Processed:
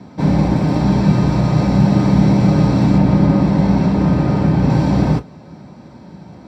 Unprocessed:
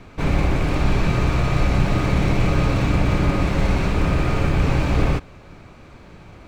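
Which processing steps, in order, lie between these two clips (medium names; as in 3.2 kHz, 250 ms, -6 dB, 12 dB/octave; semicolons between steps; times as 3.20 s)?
2.98–4.70 s: treble shelf 5.1 kHz -7.5 dB; reverberation, pre-delay 3 ms, DRR 6.5 dB; trim -6 dB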